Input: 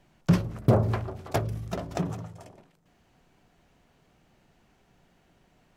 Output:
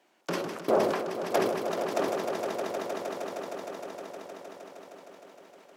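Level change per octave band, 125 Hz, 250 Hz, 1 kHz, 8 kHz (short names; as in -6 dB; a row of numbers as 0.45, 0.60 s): -20.0, -4.5, +5.0, +4.5 dB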